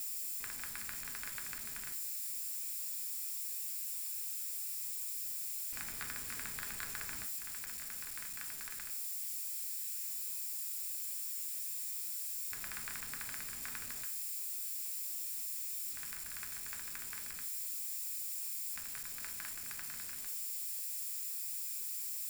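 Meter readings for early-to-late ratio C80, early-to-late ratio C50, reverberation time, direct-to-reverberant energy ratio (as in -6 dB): 16.5 dB, 12.0 dB, 0.50 s, 5.0 dB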